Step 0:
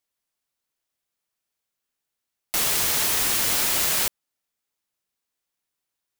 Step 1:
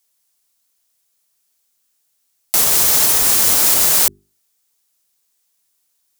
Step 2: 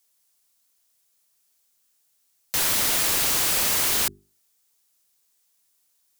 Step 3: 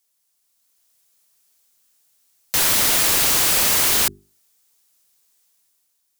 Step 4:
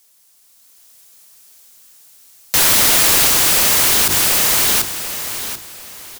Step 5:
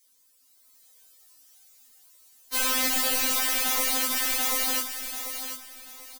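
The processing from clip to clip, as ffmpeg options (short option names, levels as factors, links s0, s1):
-filter_complex "[0:a]bass=f=250:g=-1,treble=f=4000:g=11,bandreject=f=50:t=h:w=6,bandreject=f=100:t=h:w=6,bandreject=f=150:t=h:w=6,bandreject=f=200:t=h:w=6,bandreject=f=250:t=h:w=6,bandreject=f=300:t=h:w=6,bandreject=f=350:t=h:w=6,bandreject=f=400:t=h:w=6,acrossover=split=1500[s0][s1];[s1]alimiter=limit=0.316:level=0:latency=1:release=294[s2];[s0][s2]amix=inputs=2:normalize=0,volume=2.24"
-af "aeval=exprs='(mod(6.31*val(0)+1,2)-1)/6.31':c=same,volume=0.841"
-af "dynaudnorm=f=120:g=11:m=2.24,volume=0.794"
-af "aecho=1:1:738|1476|2214:0.211|0.0655|0.0203,alimiter=level_in=13.3:limit=0.891:release=50:level=0:latency=1,volume=0.473"
-filter_complex "[0:a]acrossover=split=160|3200[s0][s1][s2];[s0]aecho=1:1:387:0.473[s3];[s2]asoftclip=type=hard:threshold=0.188[s4];[s3][s1][s4]amix=inputs=3:normalize=0,afftfilt=real='re*3.46*eq(mod(b,12),0)':imag='im*3.46*eq(mod(b,12),0)':win_size=2048:overlap=0.75,volume=0.422"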